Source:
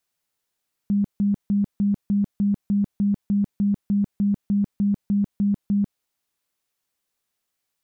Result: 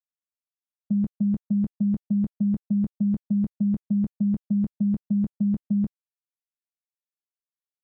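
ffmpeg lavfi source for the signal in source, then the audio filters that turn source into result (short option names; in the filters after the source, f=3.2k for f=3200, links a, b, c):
-f lavfi -i "aevalsrc='0.141*sin(2*PI*202*mod(t,0.3))*lt(mod(t,0.3),29/202)':d=5.1:s=44100"
-filter_complex "[0:a]agate=range=-32dB:threshold=-24dB:ratio=16:detection=peak,lowshelf=f=150:g=2.5,asplit=2[a][b];[b]aecho=0:1:13|23:0.316|0.282[c];[a][c]amix=inputs=2:normalize=0"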